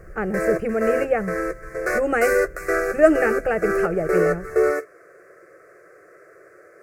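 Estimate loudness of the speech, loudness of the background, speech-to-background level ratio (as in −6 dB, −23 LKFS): −23.0 LKFS, −24.0 LKFS, 1.0 dB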